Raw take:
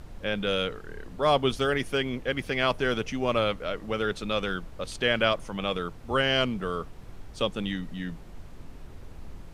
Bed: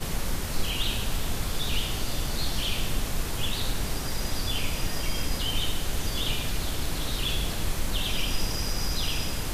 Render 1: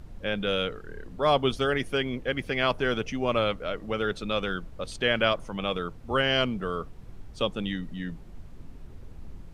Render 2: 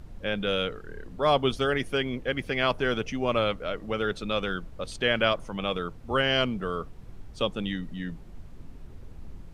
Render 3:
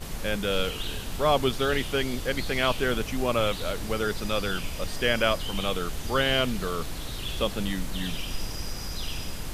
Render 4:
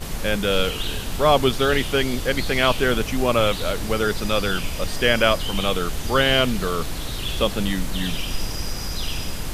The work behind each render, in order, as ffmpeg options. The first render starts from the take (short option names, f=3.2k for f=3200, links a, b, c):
-af "afftdn=nr=6:nf=-45"
-af anull
-filter_complex "[1:a]volume=-5.5dB[a];[0:a][a]amix=inputs=2:normalize=0"
-af "volume=6dB"